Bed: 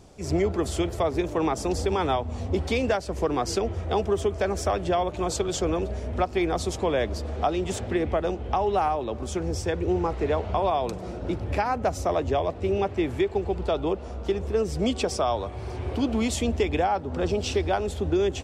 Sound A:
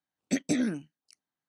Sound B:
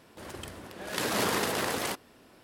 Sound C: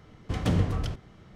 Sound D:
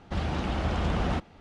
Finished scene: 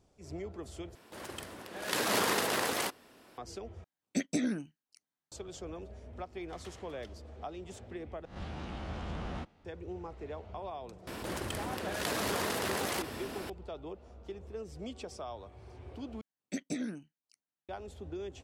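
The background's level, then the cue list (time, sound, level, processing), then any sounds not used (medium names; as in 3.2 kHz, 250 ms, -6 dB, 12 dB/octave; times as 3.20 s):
bed -17.5 dB
0.95 s: replace with B -0.5 dB + bass shelf 190 Hz -7.5 dB
3.84 s: replace with A -4 dB
6.19 s: add C -16 dB + high-pass 1 kHz
8.25 s: replace with D -13 dB + reverse spectral sustain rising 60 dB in 0.40 s
11.07 s: add B -6.5 dB + level flattener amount 70%
16.21 s: replace with A -9 dB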